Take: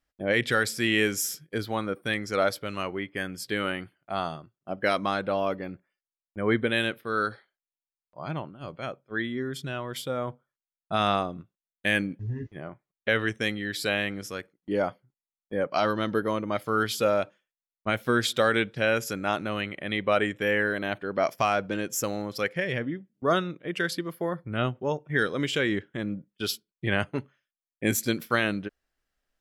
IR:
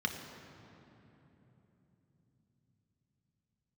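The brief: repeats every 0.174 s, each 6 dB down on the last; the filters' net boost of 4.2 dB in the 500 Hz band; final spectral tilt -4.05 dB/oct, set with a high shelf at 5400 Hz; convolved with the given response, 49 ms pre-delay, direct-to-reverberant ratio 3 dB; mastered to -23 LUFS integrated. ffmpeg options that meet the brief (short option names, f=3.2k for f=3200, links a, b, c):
-filter_complex "[0:a]equalizer=f=500:t=o:g=5,highshelf=f=5.4k:g=7.5,aecho=1:1:174|348|522|696|870|1044:0.501|0.251|0.125|0.0626|0.0313|0.0157,asplit=2[a][b];[1:a]atrim=start_sample=2205,adelay=49[c];[b][c]afir=irnorm=-1:irlink=0,volume=-8.5dB[d];[a][d]amix=inputs=2:normalize=0,volume=0.5dB"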